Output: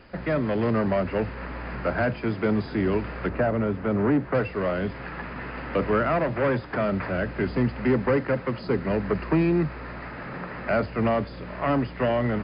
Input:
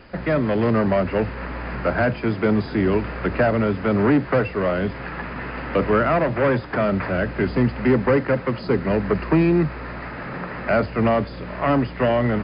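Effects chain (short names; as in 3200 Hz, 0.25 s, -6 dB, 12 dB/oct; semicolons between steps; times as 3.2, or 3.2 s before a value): 3.29–4.35 high shelf 2700 Hz -11.5 dB; gain -4.5 dB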